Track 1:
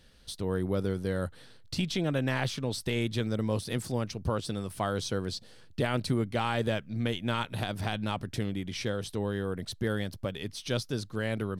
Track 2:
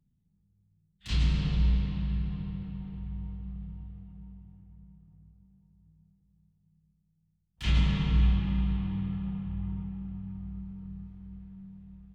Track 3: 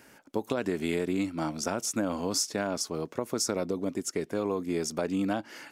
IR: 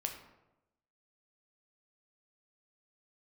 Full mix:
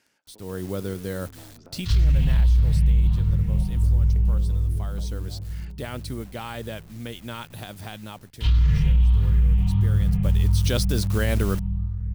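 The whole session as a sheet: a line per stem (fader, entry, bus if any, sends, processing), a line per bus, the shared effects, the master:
2.44 s -11 dB -> 3.16 s -23.5 dB -> 4.81 s -23.5 dB -> 5.4 s -16.5 dB -> 10.02 s -16.5 dB -> 10.74 s -4 dB, 0.00 s, no send, no echo send, bit-crush 8-bit; high shelf 7500 Hz +9.5 dB
-5.0 dB, 0.80 s, no send, no echo send, moving spectral ripple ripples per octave 0.52, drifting +1.5 Hz, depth 9 dB; resonant low shelf 160 Hz +11 dB, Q 3; comb 4.2 ms, depth 41%
-16.5 dB, 0.00 s, send -21 dB, echo send -18 dB, treble ducked by the level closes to 710 Hz, closed at -27.5 dBFS; bell 4300 Hz +10 dB 2.3 oct; compressor, threshold -33 dBFS, peak gain reduction 9 dB; auto duck -9 dB, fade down 0.30 s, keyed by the first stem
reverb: on, RT60 0.95 s, pre-delay 7 ms
echo: feedback echo 0.913 s, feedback 45%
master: AGC gain up to 11.5 dB; limiter -12 dBFS, peak gain reduction 10.5 dB

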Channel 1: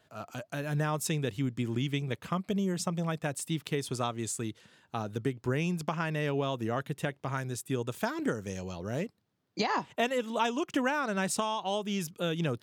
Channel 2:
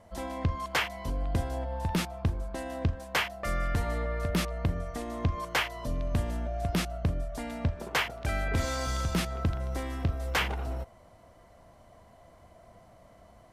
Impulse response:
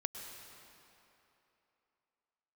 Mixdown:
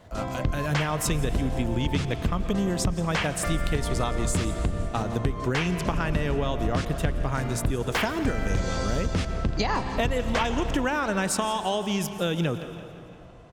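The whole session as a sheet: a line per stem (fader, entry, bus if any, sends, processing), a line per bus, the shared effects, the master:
+3.0 dB, 0.00 s, send -4.5 dB, echo send -13.5 dB, dry
-1.5 dB, 0.00 s, send -3.5 dB, no echo send, octaver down 1 oct, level +3 dB; LPF 8200 Hz 24 dB/oct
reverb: on, RT60 3.1 s, pre-delay 98 ms
echo: feedback echo 0.17 s, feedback 54%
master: compressor, threshold -21 dBFS, peak gain reduction 8 dB

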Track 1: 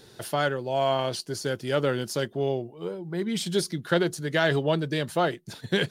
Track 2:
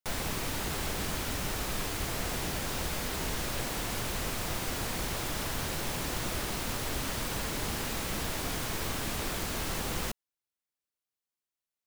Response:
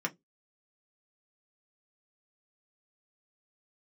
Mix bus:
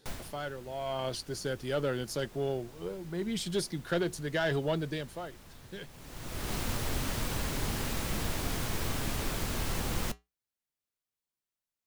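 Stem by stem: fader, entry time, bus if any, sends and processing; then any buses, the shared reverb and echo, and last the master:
0.83 s -11.5 dB -> 1.07 s -5 dB -> 4.87 s -5 dB -> 5.31 s -18 dB, 0.00 s, no send, soft clip -15.5 dBFS, distortion -18 dB
+2.5 dB, 0.00 s, no send, low shelf 230 Hz +6 dB; flange 0.65 Hz, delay 7.2 ms, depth 1.7 ms, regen -75%; auto duck -20 dB, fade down 0.35 s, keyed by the first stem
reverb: off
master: dry

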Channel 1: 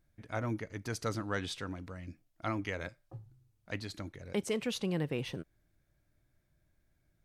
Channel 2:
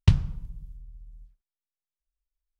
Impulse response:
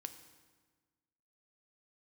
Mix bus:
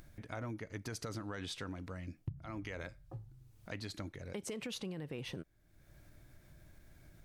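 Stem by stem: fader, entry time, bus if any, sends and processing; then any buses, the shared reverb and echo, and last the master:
+0.5 dB, 0.00 s, no send, upward compressor, threshold -45 dBFS; limiter -28 dBFS, peak gain reduction 7.5 dB
-5.0 dB, 2.20 s, no send, band-pass 130 Hz, Q 1.5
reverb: off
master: compressor 10:1, threshold -38 dBFS, peak gain reduction 20 dB

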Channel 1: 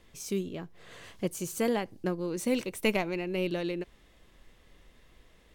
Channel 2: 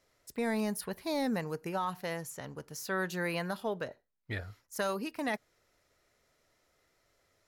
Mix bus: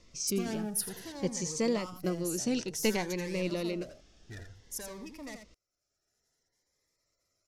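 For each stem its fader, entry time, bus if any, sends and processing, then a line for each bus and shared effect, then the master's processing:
-0.5 dB, 0.00 s, no send, no echo send, Chebyshev low-pass 5800 Hz, order 3
-3.0 dB, 0.00 s, no send, echo send -19.5 dB, spectral gate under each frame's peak -20 dB strong; sample leveller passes 3; auto duck -12 dB, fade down 1.30 s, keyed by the first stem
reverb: off
echo: echo 84 ms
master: band shelf 7900 Hz +11 dB; cascading phaser rising 0.56 Hz

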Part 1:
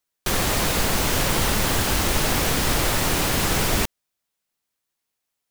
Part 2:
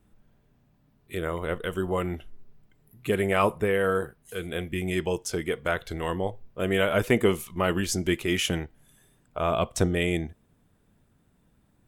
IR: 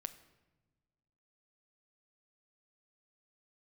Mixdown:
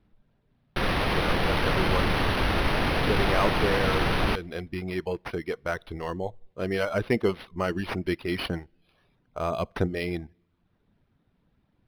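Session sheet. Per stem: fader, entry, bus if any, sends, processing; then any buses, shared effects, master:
-4.0 dB, 0.50 s, send -11 dB, dry
-2.5 dB, 0.00 s, send -19 dB, reverb removal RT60 0.63 s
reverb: on, pre-delay 7 ms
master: decimation joined by straight lines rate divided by 6×

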